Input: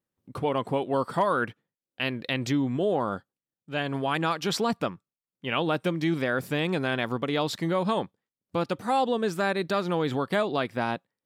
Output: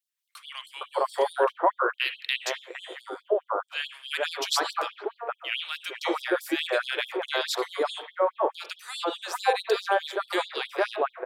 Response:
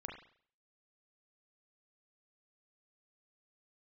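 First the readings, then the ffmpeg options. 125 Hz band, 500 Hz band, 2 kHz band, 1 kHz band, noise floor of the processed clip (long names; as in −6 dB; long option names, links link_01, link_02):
below −40 dB, 0.0 dB, +1.5 dB, +0.5 dB, −72 dBFS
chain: -filter_complex "[0:a]acrossover=split=1700[link_01][link_02];[link_01]adelay=460[link_03];[link_03][link_02]amix=inputs=2:normalize=0,asplit=2[link_04][link_05];[1:a]atrim=start_sample=2205[link_06];[link_05][link_06]afir=irnorm=-1:irlink=0,volume=2dB[link_07];[link_04][link_07]amix=inputs=2:normalize=0,afftfilt=real='re*gte(b*sr/1024,300*pow(3200/300,0.5+0.5*sin(2*PI*4.7*pts/sr)))':imag='im*gte(b*sr/1024,300*pow(3200/300,0.5+0.5*sin(2*PI*4.7*pts/sr)))':win_size=1024:overlap=0.75"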